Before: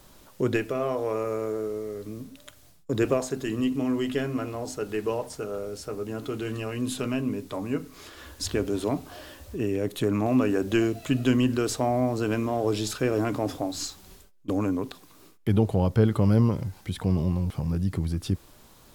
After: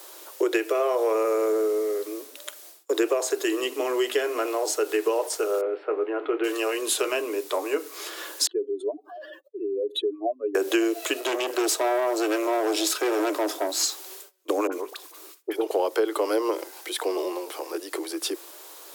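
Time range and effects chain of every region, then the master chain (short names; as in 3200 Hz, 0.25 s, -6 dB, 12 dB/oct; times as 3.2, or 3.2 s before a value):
5.61–6.44 inverse Chebyshev low-pass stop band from 6100 Hz, stop band 50 dB + doubler 26 ms -13.5 dB
8.47–10.55 spectral contrast raised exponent 2.9 + HPF 860 Hz 6 dB/oct
11.2–13.83 comb 3.1 ms, depth 38% + tube stage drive 25 dB, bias 0.65
14.67–15.71 level quantiser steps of 9 dB + dispersion highs, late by 50 ms, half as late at 1200 Hz
whole clip: steep high-pass 320 Hz 96 dB/oct; high shelf 7100 Hz +6.5 dB; compressor, threshold -28 dBFS; gain +8.5 dB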